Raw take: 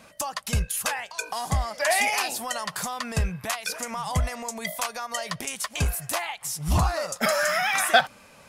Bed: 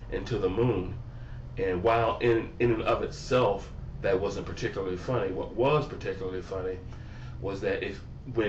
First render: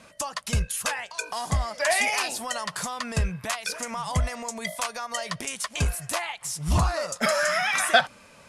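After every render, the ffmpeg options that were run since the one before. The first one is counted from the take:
ffmpeg -i in.wav -af "lowpass=frequency=11000:width=0.5412,lowpass=frequency=11000:width=1.3066,bandreject=frequency=790:width=12" out.wav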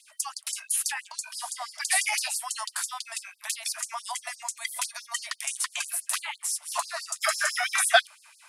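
ffmpeg -i in.wav -filter_complex "[0:a]acrossover=split=180|420|5800[link_01][link_02][link_03][link_04];[link_04]aexciter=amount=1.8:drive=5.5:freq=8400[link_05];[link_01][link_02][link_03][link_05]amix=inputs=4:normalize=0,afftfilt=real='re*gte(b*sr/1024,590*pow(4400/590,0.5+0.5*sin(2*PI*6*pts/sr)))':imag='im*gte(b*sr/1024,590*pow(4400/590,0.5+0.5*sin(2*PI*6*pts/sr)))':win_size=1024:overlap=0.75" out.wav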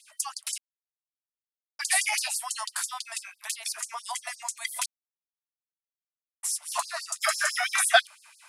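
ffmpeg -i in.wav -filter_complex "[0:a]asettb=1/sr,asplit=3[link_01][link_02][link_03];[link_01]atrim=end=3.384[link_04];[link_02]atrim=start=3.38:end=4.09,asetpts=PTS-STARTPTS,afade=type=in:duration=0.004:curve=qsin,afade=type=out:start_time=0.706:duration=0.004:curve=qsin,tremolo=f=240:d=0.333[link_05];[link_03]atrim=start=4.086[link_06];[link_04][link_05]acrossfade=duration=0.004:curve1=hsin:curve2=qsin[link_07];[link_07][link_06]acrossfade=duration=0.004:curve1=qsin:curve2=hsin,asplit=5[link_08][link_09][link_10][link_11][link_12];[link_08]atrim=end=0.58,asetpts=PTS-STARTPTS,afade=type=out:start_time=0.576:duration=0.004:curve=hsin[link_13];[link_09]atrim=start=0.58:end=1.79,asetpts=PTS-STARTPTS,volume=0[link_14];[link_10]atrim=start=1.79:end=4.86,asetpts=PTS-STARTPTS,afade=type=in:duration=0.004:curve=hsin,afade=type=out:start_time=3.066:duration=0.004:curve=hsin[link_15];[link_11]atrim=start=4.86:end=6.43,asetpts=PTS-STARTPTS,volume=0[link_16];[link_12]atrim=start=6.43,asetpts=PTS-STARTPTS,afade=type=in:duration=0.004:curve=hsin[link_17];[link_13][link_14][link_15][link_16][link_17]concat=n=5:v=0:a=1" out.wav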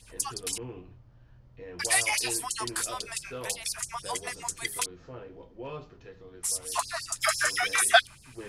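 ffmpeg -i in.wav -i bed.wav -filter_complex "[1:a]volume=-15dB[link_01];[0:a][link_01]amix=inputs=2:normalize=0" out.wav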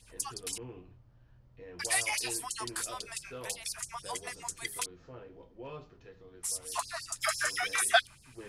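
ffmpeg -i in.wav -af "volume=-5dB" out.wav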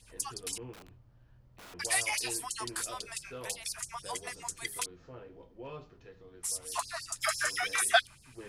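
ffmpeg -i in.wav -filter_complex "[0:a]asettb=1/sr,asplit=3[link_01][link_02][link_03];[link_01]atrim=end=0.734[link_04];[link_02]atrim=start=0.73:end=1.74,asetpts=PTS-STARTPTS,afade=type=in:duration=0.004:curve=qsin,afade=type=out:start_time=1.006:duration=0.004:curve=qsin,aeval=exprs='(mod(211*val(0)+1,2)-1)/211':channel_layout=same[link_05];[link_03]atrim=start=1.736[link_06];[link_04][link_05]acrossfade=duration=0.004:curve1=hsin:curve2=qsin[link_07];[link_07][link_06]acrossfade=duration=0.004:curve1=qsin:curve2=hsin" out.wav

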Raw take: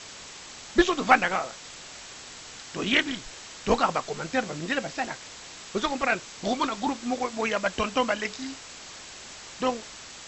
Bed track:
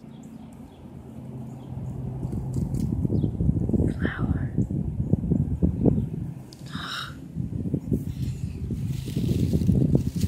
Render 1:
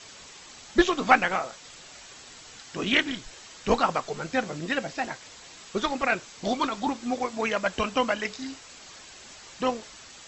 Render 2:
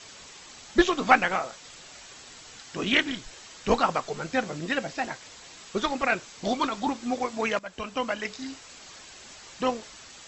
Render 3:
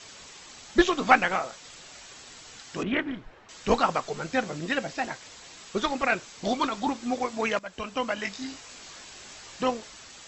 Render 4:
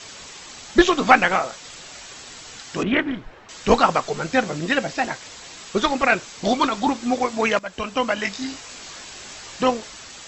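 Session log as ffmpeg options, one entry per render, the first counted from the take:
ffmpeg -i in.wav -af "afftdn=noise_reduction=6:noise_floor=-44" out.wav
ffmpeg -i in.wav -filter_complex "[0:a]asplit=2[link_01][link_02];[link_01]atrim=end=7.59,asetpts=PTS-STARTPTS,afade=type=out:start_time=7.586:duration=0.004:curve=hsin:silence=0.158489[link_03];[link_02]atrim=start=7.59,asetpts=PTS-STARTPTS,afade=type=in:duration=1.2:curve=qsin:silence=0.158489[link_04];[link_03][link_04]concat=n=2:v=0:a=1" out.wav
ffmpeg -i in.wav -filter_complex "[0:a]asettb=1/sr,asplit=3[link_01][link_02][link_03];[link_01]atrim=end=2.834[link_04];[link_02]atrim=start=2.83:end=3.49,asetpts=PTS-STARTPTS,afade=type=in:duration=0.004:curve=qsin,afade=type=out:start_time=0.656:duration=0.004:curve=qsin,lowpass=1500[link_05];[link_03]atrim=start=3.486[link_06];[link_04][link_05]acrossfade=duration=0.004:curve1=hsin:curve2=qsin[link_07];[link_07][link_06]acrossfade=duration=0.004:curve1=qsin:curve2=hsin,asettb=1/sr,asplit=3[link_08][link_09][link_10];[link_08]atrim=end=8.154[link_11];[link_09]atrim=start=8.15:end=9.64,asetpts=PTS-STARTPTS,afade=type=in:duration=0.004:curve=qsin,afade=type=out:start_time=1.486:duration=0.004:curve=qsin,asplit=2[link_12][link_13];[link_13]adelay=20,volume=-4.5dB[link_14];[link_12][link_14]amix=inputs=2:normalize=0,atrim=end_sample=65709[link_15];[link_10]atrim=start=9.636[link_16];[link_11][link_15]acrossfade=duration=0.004:curve1=hsin:curve2=qsin[link_17];[link_17][link_16]acrossfade=duration=0.004:curve1=qsin:curve2=hsin" out.wav
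ffmpeg -i in.wav -af "volume=7dB,alimiter=limit=-1dB:level=0:latency=1" out.wav

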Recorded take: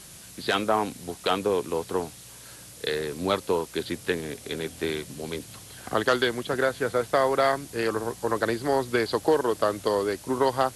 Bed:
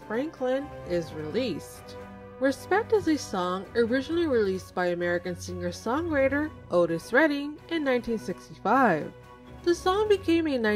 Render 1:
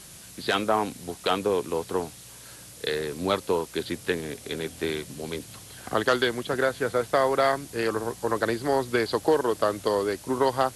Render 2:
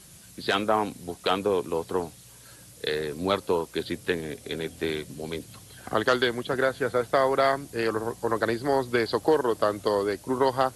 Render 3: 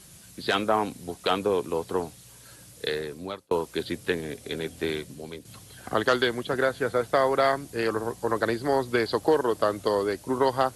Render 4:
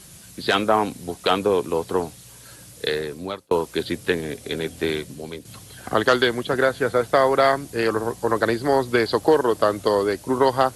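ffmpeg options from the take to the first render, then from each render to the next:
ffmpeg -i in.wav -af anull out.wav
ffmpeg -i in.wav -af "afftdn=noise_reduction=6:noise_floor=-46" out.wav
ffmpeg -i in.wav -filter_complex "[0:a]asplit=3[link_01][link_02][link_03];[link_01]atrim=end=3.51,asetpts=PTS-STARTPTS,afade=type=out:start_time=2.86:duration=0.65[link_04];[link_02]atrim=start=3.51:end=5.45,asetpts=PTS-STARTPTS,afade=type=in:duration=0.004:curve=hsin,afade=type=out:start_time=1.45:duration=0.49:silence=0.334965[link_05];[link_03]atrim=start=5.45,asetpts=PTS-STARTPTS,afade=type=in:duration=0.004:curve=hsin:silence=0.334965[link_06];[link_04][link_05][link_06]concat=n=3:v=0:a=1" out.wav
ffmpeg -i in.wav -af "volume=5dB" out.wav

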